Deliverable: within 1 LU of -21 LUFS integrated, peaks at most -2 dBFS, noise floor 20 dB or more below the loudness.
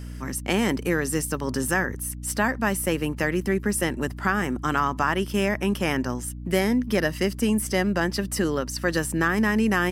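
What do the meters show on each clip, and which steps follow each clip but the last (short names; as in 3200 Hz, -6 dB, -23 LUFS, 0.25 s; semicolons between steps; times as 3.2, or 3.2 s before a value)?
hum 60 Hz; harmonics up to 300 Hz; hum level -34 dBFS; loudness -25.0 LUFS; peak -8.0 dBFS; loudness target -21.0 LUFS
-> de-hum 60 Hz, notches 5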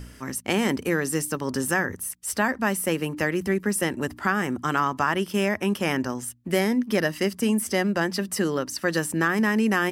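hum none; loudness -25.0 LUFS; peak -8.5 dBFS; loudness target -21.0 LUFS
-> gain +4 dB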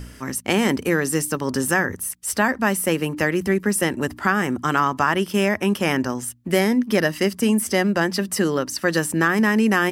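loudness -21.0 LUFS; peak -4.5 dBFS; noise floor -44 dBFS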